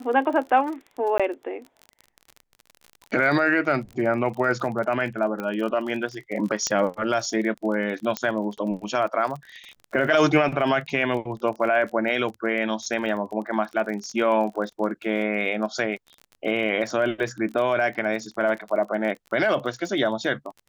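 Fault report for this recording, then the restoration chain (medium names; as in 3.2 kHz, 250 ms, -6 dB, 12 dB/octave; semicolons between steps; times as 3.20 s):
crackle 31 per s -32 dBFS
1.18–1.20 s: dropout 16 ms
5.40 s: pop -18 dBFS
6.67 s: pop -11 dBFS
8.17 s: pop -10 dBFS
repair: de-click; interpolate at 1.18 s, 16 ms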